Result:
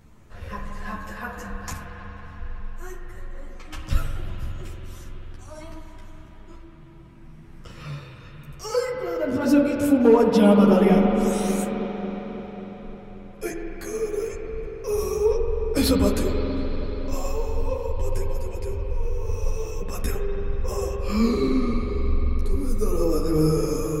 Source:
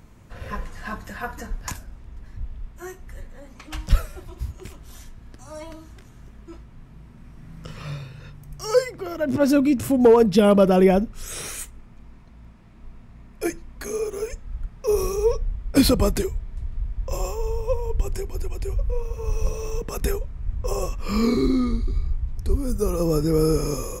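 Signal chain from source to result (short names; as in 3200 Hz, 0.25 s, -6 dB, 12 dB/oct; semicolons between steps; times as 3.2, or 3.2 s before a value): on a send at -1 dB: reverb RT60 5.3 s, pre-delay 45 ms; on the sum: ensemble effect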